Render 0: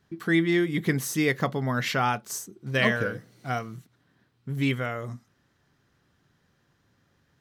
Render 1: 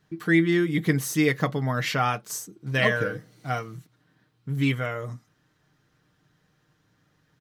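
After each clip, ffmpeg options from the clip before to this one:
-af "aecho=1:1:6.5:0.47"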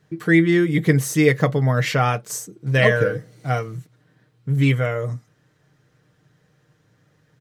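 -af "equalizer=f=125:t=o:w=1:g=9,equalizer=f=500:t=o:w=1:g=9,equalizer=f=2k:t=o:w=1:g=4,equalizer=f=8k:t=o:w=1:g=5"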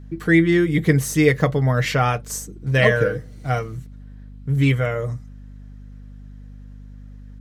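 -af "aeval=exprs='val(0)+0.0126*(sin(2*PI*50*n/s)+sin(2*PI*2*50*n/s)/2+sin(2*PI*3*50*n/s)/3+sin(2*PI*4*50*n/s)/4+sin(2*PI*5*50*n/s)/5)':c=same"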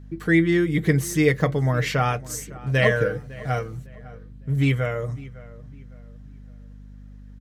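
-filter_complex "[0:a]asplit=2[a][b];[b]adelay=555,lowpass=f=2.5k:p=1,volume=-19dB,asplit=2[c][d];[d]adelay=555,lowpass=f=2.5k:p=1,volume=0.35,asplit=2[e][f];[f]adelay=555,lowpass=f=2.5k:p=1,volume=0.35[g];[a][c][e][g]amix=inputs=4:normalize=0,volume=-3dB"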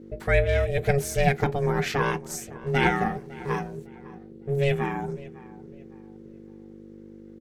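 -af "aeval=exprs='val(0)*sin(2*PI*280*n/s)':c=same"

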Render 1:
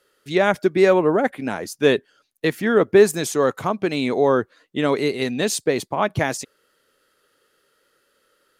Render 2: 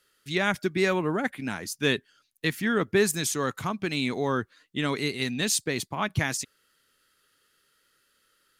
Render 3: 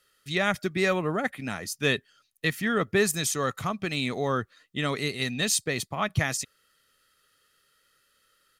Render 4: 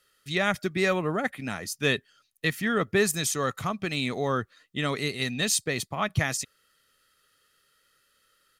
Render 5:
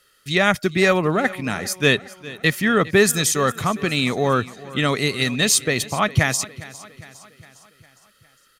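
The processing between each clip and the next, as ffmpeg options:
-af "equalizer=f=550:w=0.7:g=-13.5"
-af "aecho=1:1:1.6:0.34"
-af anull
-af "aecho=1:1:407|814|1221|1628|2035:0.119|0.0642|0.0347|0.0187|0.0101,volume=8dB"

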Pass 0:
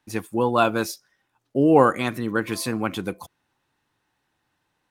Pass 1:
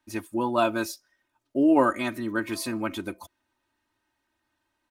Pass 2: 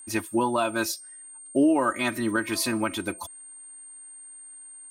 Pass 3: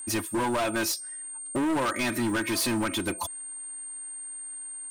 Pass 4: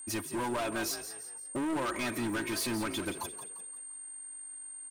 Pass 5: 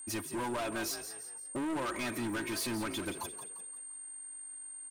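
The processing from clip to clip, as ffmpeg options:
-af "aecho=1:1:3.2:0.83,volume=-6dB"
-af "equalizer=f=200:w=0.31:g=-4.5,alimiter=limit=-22dB:level=0:latency=1:release=382,aeval=exprs='val(0)+0.00282*sin(2*PI*8700*n/s)':c=same,volume=8.5dB"
-filter_complex "[0:a]asplit=2[a][b];[b]acompressor=threshold=-31dB:ratio=6,volume=0.5dB[c];[a][c]amix=inputs=2:normalize=0,asoftclip=type=hard:threshold=-24dB"
-filter_complex "[0:a]asplit=5[a][b][c][d][e];[b]adelay=173,afreqshift=48,volume=-11dB[f];[c]adelay=346,afreqshift=96,volume=-19.4dB[g];[d]adelay=519,afreqshift=144,volume=-27.8dB[h];[e]adelay=692,afreqshift=192,volume=-36.2dB[i];[a][f][g][h][i]amix=inputs=5:normalize=0,volume=-6.5dB"
-af "asoftclip=type=tanh:threshold=-27.5dB,volume=-1dB"

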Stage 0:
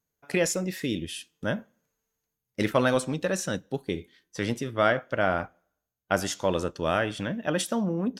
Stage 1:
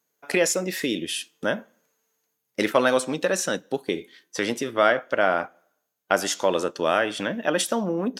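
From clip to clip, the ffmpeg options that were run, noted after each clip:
-filter_complex "[0:a]highpass=290,asplit=2[a][b];[b]acompressor=threshold=-34dB:ratio=6,volume=2dB[c];[a][c]amix=inputs=2:normalize=0,volume=2dB"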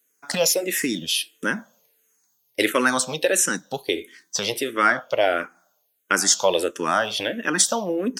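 -filter_complex "[0:a]highshelf=f=3.5k:g=11,asplit=2[a][b];[b]afreqshift=-1.5[c];[a][c]amix=inputs=2:normalize=1,volume=3dB"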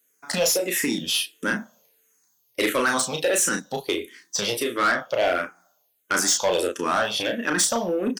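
-filter_complex "[0:a]asplit=2[a][b];[b]adelay=34,volume=-5dB[c];[a][c]amix=inputs=2:normalize=0,asoftclip=type=tanh:threshold=-15dB"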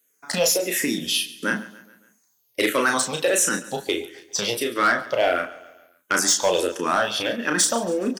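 -filter_complex "[0:a]asplit=2[a][b];[b]acrusher=bits=2:mix=0:aa=0.5,volume=-9dB[c];[a][c]amix=inputs=2:normalize=0,aecho=1:1:140|280|420|560:0.126|0.0617|0.0302|0.0148"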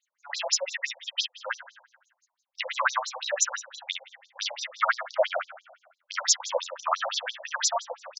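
-filter_complex "[0:a]asplit=2[a][b];[b]adelay=33,volume=-3dB[c];[a][c]amix=inputs=2:normalize=0,afftfilt=real='re*between(b*sr/1024,670*pow(5500/670,0.5+0.5*sin(2*PI*5.9*pts/sr))/1.41,670*pow(5500/670,0.5+0.5*sin(2*PI*5.9*pts/sr))*1.41)':imag='im*between(b*sr/1024,670*pow(5500/670,0.5+0.5*sin(2*PI*5.9*pts/sr))/1.41,670*pow(5500/670,0.5+0.5*sin(2*PI*5.9*pts/sr))*1.41)':win_size=1024:overlap=0.75"

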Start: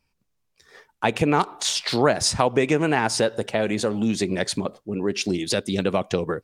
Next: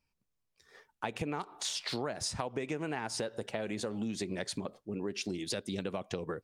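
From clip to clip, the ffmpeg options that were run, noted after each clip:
-af "acompressor=threshold=-23dB:ratio=6,volume=-9dB"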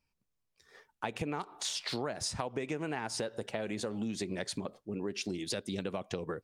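-af anull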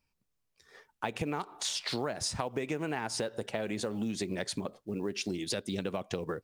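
-af "acrusher=bits=9:mode=log:mix=0:aa=0.000001,volume=2dB"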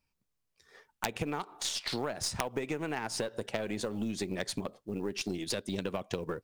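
-af "aeval=exprs='0.158*(cos(1*acos(clip(val(0)/0.158,-1,1)))-cos(1*PI/2))+0.0316*(cos(3*acos(clip(val(0)/0.158,-1,1)))-cos(3*PI/2))+0.00708*(cos(4*acos(clip(val(0)/0.158,-1,1)))-cos(4*PI/2))':c=same,aeval=exprs='(mod(10.6*val(0)+1,2)-1)/10.6':c=same,volume=6.5dB"

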